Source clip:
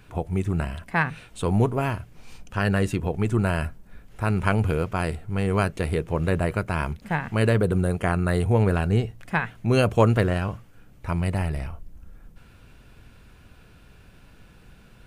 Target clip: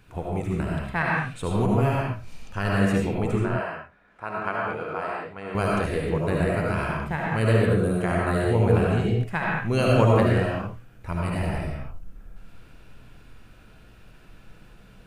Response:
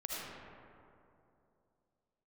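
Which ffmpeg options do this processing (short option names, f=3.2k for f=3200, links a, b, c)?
-filter_complex "[0:a]asettb=1/sr,asplit=3[a][b][c];[a]atrim=end=3.364[d];[b]atrim=start=3.36:end=5.55,asetpts=PTS-STARTPTS,afade=t=in:d=0.004:c=qsin,afade=t=out:st=2.186:d=0.004:c=qsin,bandpass=f=1.1k:t=q:w=0.8:csg=0[e];[c]atrim=start=5.546[f];[d][e]acrossfade=d=0.004:c1=hsin:c2=qsin[g];[g][f]acrossfade=d=0.004:c1=qsin:c2=hsin[h];[1:a]atrim=start_sample=2205,afade=t=out:st=0.28:d=0.01,atrim=end_sample=12789[i];[h][i]afir=irnorm=-1:irlink=0"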